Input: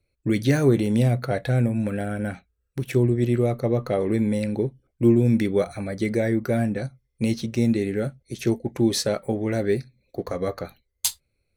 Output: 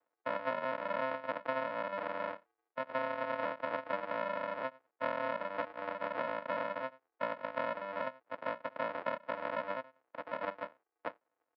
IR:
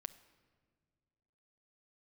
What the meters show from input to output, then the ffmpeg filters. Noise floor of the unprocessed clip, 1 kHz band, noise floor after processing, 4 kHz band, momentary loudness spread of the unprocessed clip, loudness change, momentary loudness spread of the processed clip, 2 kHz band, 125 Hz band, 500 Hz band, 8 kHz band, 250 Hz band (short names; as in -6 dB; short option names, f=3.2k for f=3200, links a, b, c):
-75 dBFS, +1.0 dB, under -85 dBFS, -16.5 dB, 12 LU, -14.5 dB, 7 LU, -4.5 dB, -35.0 dB, -12.5 dB, under -40 dB, -26.0 dB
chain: -filter_complex "[0:a]aecho=1:1:1.4:0.78,aresample=11025,acrusher=samples=28:mix=1:aa=0.000001,aresample=44100,highpass=270,lowpass=3k,acompressor=threshold=-26dB:ratio=5,acrossover=split=420 2200:gain=0.0708 1 0.1[a][b][c];[a][b][c]amix=inputs=3:normalize=0"